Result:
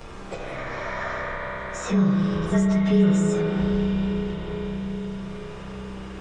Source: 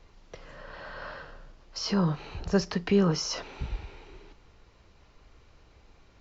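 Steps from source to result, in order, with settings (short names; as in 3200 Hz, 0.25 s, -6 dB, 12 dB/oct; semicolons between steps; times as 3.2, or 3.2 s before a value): inharmonic rescaling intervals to 109%; spring tank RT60 3.9 s, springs 31/36 ms, chirp 40 ms, DRR -3.5 dB; three-band squash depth 70%; gain +2.5 dB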